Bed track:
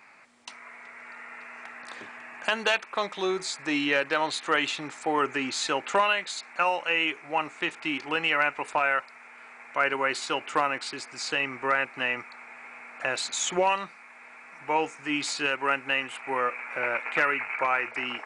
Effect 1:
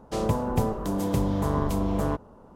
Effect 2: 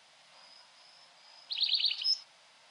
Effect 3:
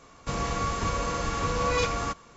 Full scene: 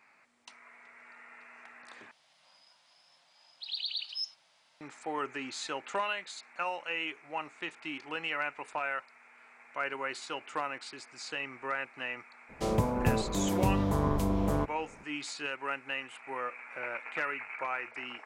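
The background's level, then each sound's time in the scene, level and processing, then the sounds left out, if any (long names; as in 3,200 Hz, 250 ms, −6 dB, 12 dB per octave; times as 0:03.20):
bed track −9.5 dB
0:02.11: overwrite with 2 −6.5 dB
0:12.49: mix in 1 −3 dB
not used: 3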